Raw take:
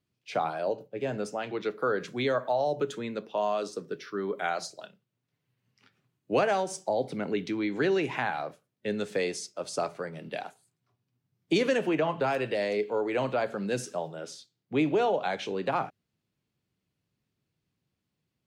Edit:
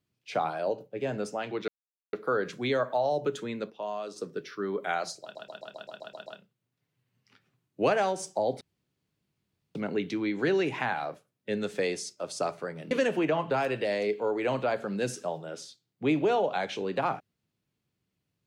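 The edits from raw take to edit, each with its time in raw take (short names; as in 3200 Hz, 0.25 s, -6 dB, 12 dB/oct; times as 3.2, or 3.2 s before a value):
1.68 insert silence 0.45 s
3.25–3.71 gain -6.5 dB
4.77 stutter 0.13 s, 9 plays
7.12 insert room tone 1.14 s
10.28–11.61 cut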